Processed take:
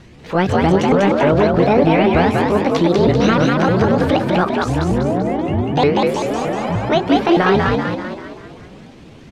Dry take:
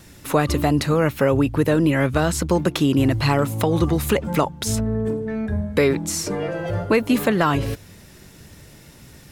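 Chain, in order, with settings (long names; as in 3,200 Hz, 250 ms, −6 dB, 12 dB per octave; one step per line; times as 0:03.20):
pitch shifter swept by a sawtooth +10 semitones, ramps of 307 ms
low-pass filter 3,800 Hz 12 dB per octave
low-shelf EQ 330 Hz +3 dB
echo with shifted repeats 194 ms, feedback 50%, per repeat +56 Hz, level −3 dB
transient designer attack −4 dB, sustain 0 dB
level +3.5 dB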